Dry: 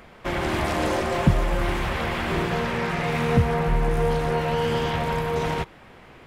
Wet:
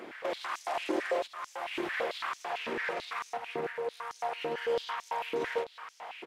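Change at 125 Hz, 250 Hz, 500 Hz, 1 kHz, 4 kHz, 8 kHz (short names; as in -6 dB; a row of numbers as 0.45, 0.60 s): -34.0, -15.5, -9.0, -8.5, -8.0, -10.0 dB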